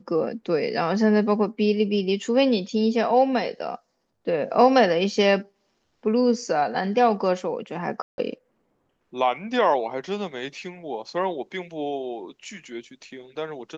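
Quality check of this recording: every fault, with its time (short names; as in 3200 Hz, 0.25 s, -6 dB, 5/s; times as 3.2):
8.02–8.18 gap 0.161 s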